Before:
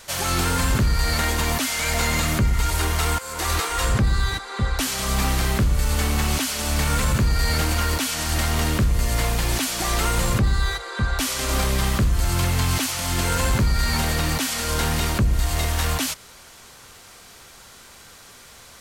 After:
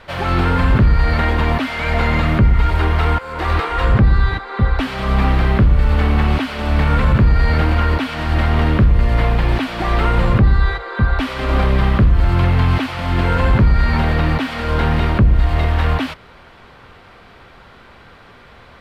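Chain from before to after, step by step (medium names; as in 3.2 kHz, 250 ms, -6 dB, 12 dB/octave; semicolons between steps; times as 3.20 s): distance through air 430 m; trim +8 dB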